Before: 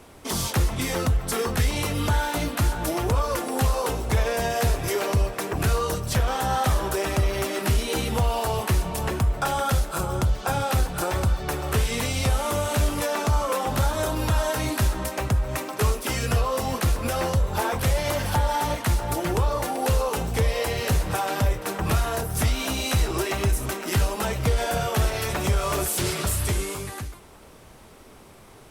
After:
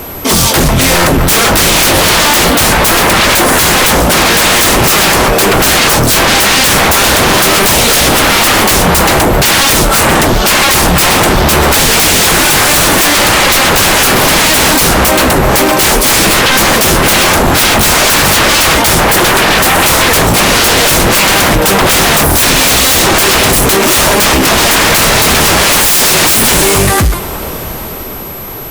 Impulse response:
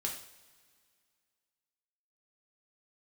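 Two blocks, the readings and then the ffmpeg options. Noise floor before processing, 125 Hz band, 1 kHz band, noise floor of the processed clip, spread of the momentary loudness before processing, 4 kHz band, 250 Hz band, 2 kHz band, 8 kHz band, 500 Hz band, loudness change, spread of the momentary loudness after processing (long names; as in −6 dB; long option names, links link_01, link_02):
−48 dBFS, +9.0 dB, +18.0 dB, −19 dBFS, 2 LU, +24.5 dB, +17.5 dB, +23.0 dB, +23.5 dB, +15.5 dB, +19.0 dB, 2 LU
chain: -filter_complex "[0:a]dynaudnorm=framelen=130:gausssize=17:maxgain=6.5dB,aeval=exprs='val(0)+0.00398*sin(2*PI*12000*n/s)':channel_layout=same,aeval=exprs='0.501*sin(PI/2*7.94*val(0)/0.501)':channel_layout=same,asplit=2[link_01][link_02];[1:a]atrim=start_sample=2205[link_03];[link_02][link_03]afir=irnorm=-1:irlink=0,volume=-14dB[link_04];[link_01][link_04]amix=inputs=2:normalize=0"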